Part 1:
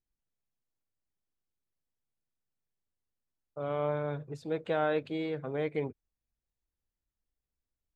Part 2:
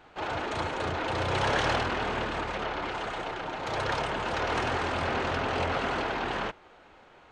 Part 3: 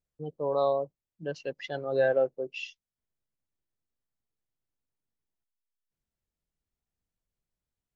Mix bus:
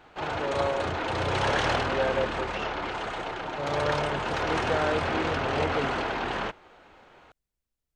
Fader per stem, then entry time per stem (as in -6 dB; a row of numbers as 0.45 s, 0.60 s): +1.0 dB, +1.0 dB, -3.0 dB; 0.00 s, 0.00 s, 0.00 s